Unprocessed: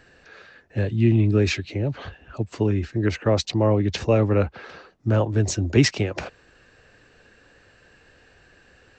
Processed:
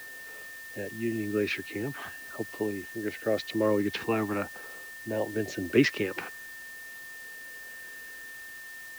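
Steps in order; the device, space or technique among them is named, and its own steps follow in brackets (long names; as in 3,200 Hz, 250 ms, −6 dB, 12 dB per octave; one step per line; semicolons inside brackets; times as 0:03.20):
shortwave radio (band-pass filter 290–2,800 Hz; amplitude tremolo 0.51 Hz, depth 57%; auto-filter notch saw down 0.45 Hz 440–2,100 Hz; steady tone 1,800 Hz −42 dBFS; white noise bed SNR 18 dB)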